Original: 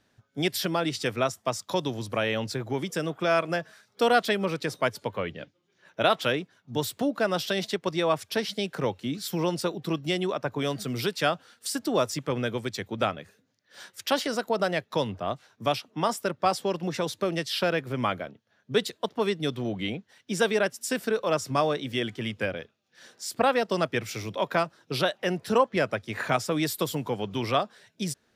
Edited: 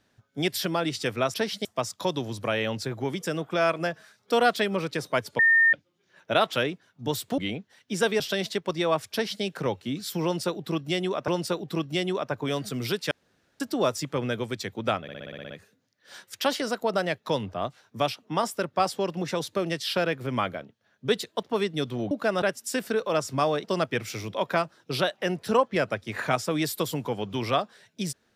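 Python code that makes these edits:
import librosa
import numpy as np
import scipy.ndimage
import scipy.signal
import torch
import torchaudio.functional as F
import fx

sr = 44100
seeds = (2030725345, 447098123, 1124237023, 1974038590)

y = fx.edit(x, sr, fx.bleep(start_s=5.08, length_s=0.34, hz=1820.0, db=-15.5),
    fx.swap(start_s=7.07, length_s=0.31, other_s=19.77, other_length_s=0.82),
    fx.duplicate(start_s=8.3, length_s=0.31, to_s=1.34),
    fx.repeat(start_s=9.42, length_s=1.04, count=2),
    fx.room_tone_fill(start_s=11.25, length_s=0.49),
    fx.stutter(start_s=13.16, slice_s=0.06, count=9),
    fx.cut(start_s=21.81, length_s=1.84), tone=tone)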